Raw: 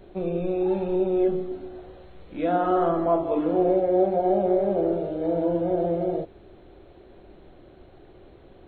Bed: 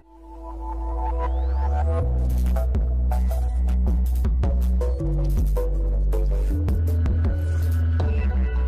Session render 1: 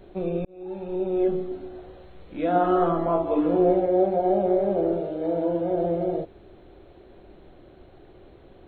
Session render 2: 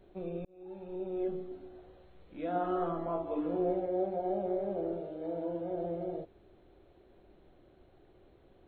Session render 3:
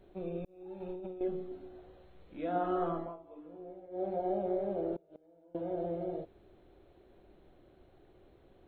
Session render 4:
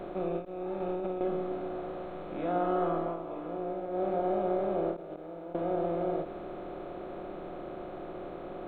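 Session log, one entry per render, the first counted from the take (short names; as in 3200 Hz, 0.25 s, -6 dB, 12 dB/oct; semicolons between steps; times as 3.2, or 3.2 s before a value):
0.45–1.3 fade in; 2.54–3.86 doubler 17 ms -5 dB; 5.01–5.77 low shelf 140 Hz -7 dB
gain -11.5 dB
0.8–1.21 negative-ratio compressor -42 dBFS; 2.96–4.1 dip -17 dB, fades 0.20 s; 4.96–5.55 flipped gate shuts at -33 dBFS, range -26 dB
per-bin compression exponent 0.4; ending taper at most 170 dB/s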